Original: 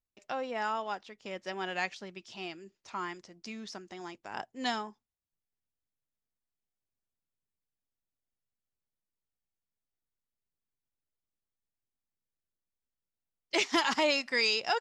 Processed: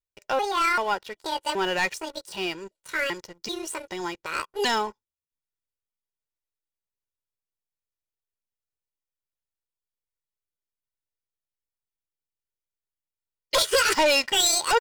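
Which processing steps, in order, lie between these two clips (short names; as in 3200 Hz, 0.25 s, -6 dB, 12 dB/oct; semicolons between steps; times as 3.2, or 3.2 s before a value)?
trilling pitch shifter +8 st, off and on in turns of 0.387 s; sample leveller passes 3; comb 2.1 ms, depth 49%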